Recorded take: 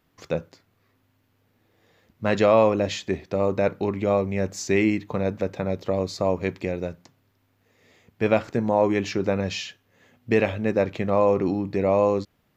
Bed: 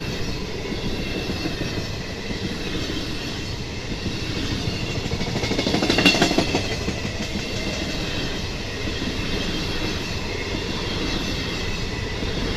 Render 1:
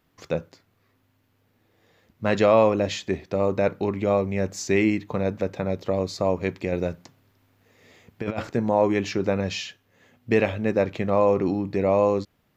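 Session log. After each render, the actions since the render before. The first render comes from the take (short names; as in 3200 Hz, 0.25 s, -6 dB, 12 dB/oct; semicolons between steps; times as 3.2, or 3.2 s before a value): 6.72–8.48 negative-ratio compressor -27 dBFS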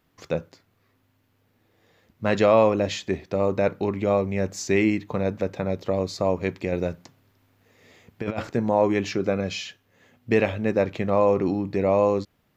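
9.16–9.66 notch comb 920 Hz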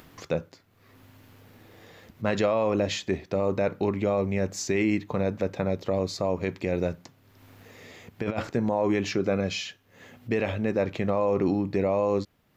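limiter -14.5 dBFS, peak gain reduction 9 dB; upward compressor, threshold -39 dBFS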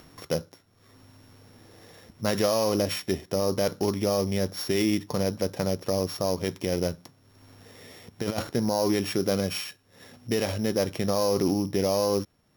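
sample sorter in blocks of 8 samples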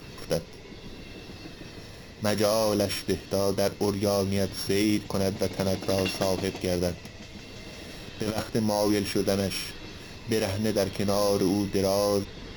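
add bed -16.5 dB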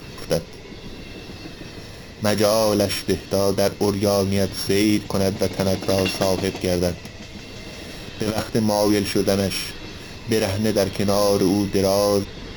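gain +6 dB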